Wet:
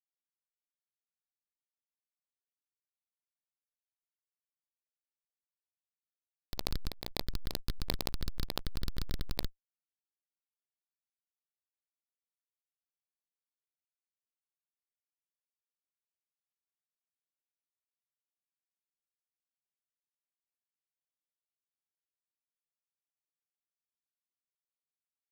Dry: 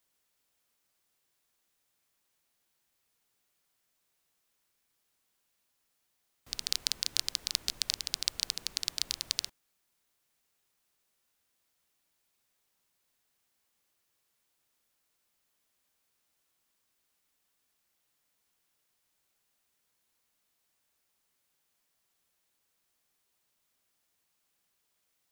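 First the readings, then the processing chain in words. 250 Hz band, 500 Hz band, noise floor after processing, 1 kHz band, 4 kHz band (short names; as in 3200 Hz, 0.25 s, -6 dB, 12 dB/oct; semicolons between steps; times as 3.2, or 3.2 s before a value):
+15.0 dB, +13.5 dB, under -85 dBFS, +7.5 dB, -9.0 dB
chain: dark delay 0.277 s, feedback 36%, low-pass 700 Hz, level -8.5 dB; Schmitt trigger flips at -30 dBFS; backwards sustainer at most 47 dB/s; gain +15.5 dB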